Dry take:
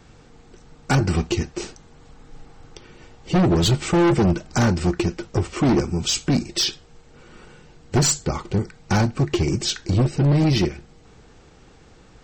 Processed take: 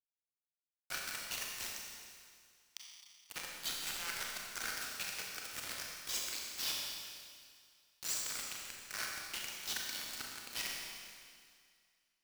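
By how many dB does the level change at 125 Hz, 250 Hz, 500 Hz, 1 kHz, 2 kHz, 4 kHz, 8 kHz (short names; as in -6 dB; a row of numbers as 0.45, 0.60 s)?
under -40 dB, -39.5 dB, -31.5 dB, -20.5 dB, -11.0 dB, -12.5 dB, -12.0 dB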